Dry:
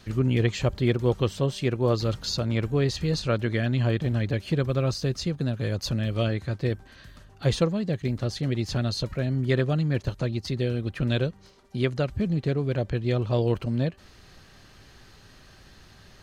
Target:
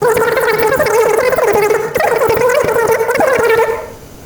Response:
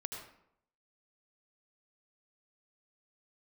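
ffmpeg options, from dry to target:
-filter_complex "[0:a]agate=range=-33dB:threshold=-49dB:ratio=3:detection=peak,lowshelf=f=260:g=6.5,bandreject=f=50:t=h:w=6,bandreject=f=100:t=h:w=6,bandreject=f=150:t=h:w=6,bandreject=f=200:t=h:w=6,bandreject=f=250:t=h:w=6,bandreject=f=300:t=h:w=6,bandreject=f=350:t=h:w=6,bandreject=f=400:t=h:w=6,bandreject=f=450:t=h:w=6,bandreject=f=500:t=h:w=6,asetrate=168021,aresample=44100,asplit=2[a][b];[1:a]atrim=start_sample=2205[c];[b][c]afir=irnorm=-1:irlink=0,volume=-0.5dB[d];[a][d]amix=inputs=2:normalize=0,acrusher=bits=6:mode=log:mix=0:aa=0.000001,alimiter=level_in=10.5dB:limit=-1dB:release=50:level=0:latency=1,volume=-1dB"

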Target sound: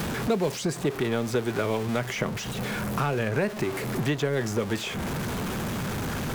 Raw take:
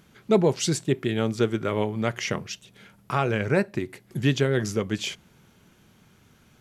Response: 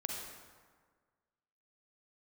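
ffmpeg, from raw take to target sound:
-filter_complex "[0:a]aeval=exprs='val(0)+0.5*0.0355*sgn(val(0))':c=same,asetrate=45938,aresample=44100,acrossover=split=490|1700[a][b][c];[a]acompressor=threshold=-35dB:ratio=4[d];[b]acompressor=threshold=-37dB:ratio=4[e];[c]acompressor=threshold=-45dB:ratio=4[f];[d][e][f]amix=inputs=3:normalize=0,volume=6.5dB"

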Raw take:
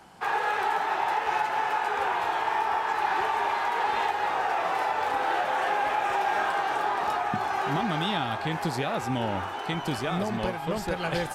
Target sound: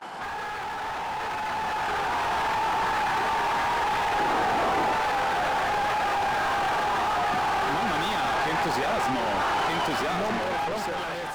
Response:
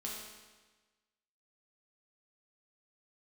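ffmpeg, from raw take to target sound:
-filter_complex "[0:a]highpass=130,asplit=2[a][b];[b]highpass=f=720:p=1,volume=36dB,asoftclip=type=tanh:threshold=-15dB[c];[a][c]amix=inputs=2:normalize=0,lowpass=f=1.9k:p=1,volume=-6dB,alimiter=level_in=2.5dB:limit=-24dB:level=0:latency=1:release=142,volume=-2.5dB,dynaudnorm=f=690:g=5:m=7.5dB,asettb=1/sr,asplit=3[d][e][f];[d]atrim=end=4.194[g];[e]atrim=start=4.19:end=4.93,asetpts=PTS-STARTPTS,afade=t=in:d=0.004:c=qsin,afade=t=out:st=0.736:d=0.004:c=qsin,equalizer=f=320:w=1.4:g=9[h];[f]atrim=start=4.926[i];[g][h]acrossfade=d=0.004:c1=hsin:c2=qsin[j];[j][i]acrossfade=d=0.004:c1=qsin:c2=hsin,acontrast=28,agate=range=-25dB:threshold=-28dB:ratio=16:detection=peak,volume=-7.5dB"

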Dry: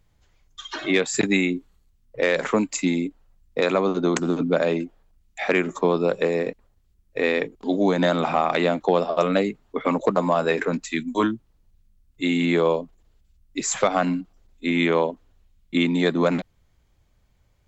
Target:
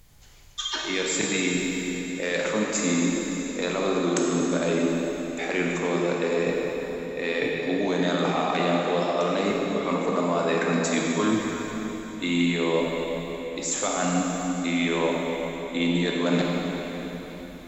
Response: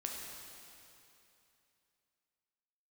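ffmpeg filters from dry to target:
-filter_complex "[0:a]aemphasis=mode=production:type=75kf,areverse,acompressor=threshold=-32dB:ratio=8,areverse,highshelf=f=6.8k:g=-4.5[a];[1:a]atrim=start_sample=2205,asetrate=29106,aresample=44100[b];[a][b]afir=irnorm=-1:irlink=0,volume=8dB"

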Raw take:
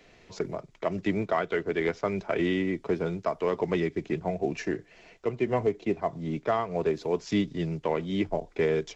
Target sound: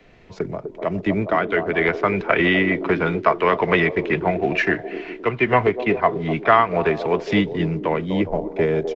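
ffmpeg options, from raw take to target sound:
-filter_complex "[0:a]bass=f=250:g=4,treble=f=4k:g=-11,acrossover=split=270|1000|3700[a][b][c][d];[b]aecho=1:1:250|412.5|518.1|586.8|631.4:0.631|0.398|0.251|0.158|0.1[e];[c]dynaudnorm=f=300:g=13:m=16dB[f];[a][e][f][d]amix=inputs=4:normalize=0,volume=4.5dB"

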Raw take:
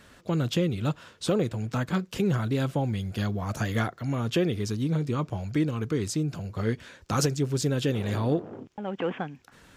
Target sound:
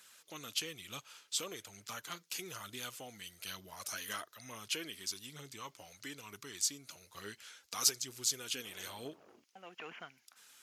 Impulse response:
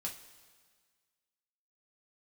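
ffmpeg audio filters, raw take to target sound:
-af "aderivative,aphaser=in_gain=1:out_gain=1:delay=4.1:decay=0.29:speed=1.2:type=triangular,asetrate=40517,aresample=44100,volume=2.5dB"

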